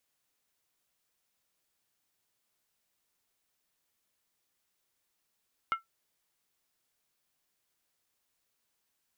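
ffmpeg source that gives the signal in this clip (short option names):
-f lavfi -i "aevalsrc='0.0794*pow(10,-3*t/0.14)*sin(2*PI*1340*t)+0.0299*pow(10,-3*t/0.111)*sin(2*PI*2136*t)+0.0112*pow(10,-3*t/0.096)*sin(2*PI*2862.2*t)+0.00422*pow(10,-3*t/0.092)*sin(2*PI*3076.6*t)+0.00158*pow(10,-3*t/0.086)*sin(2*PI*3555*t)':d=0.63:s=44100"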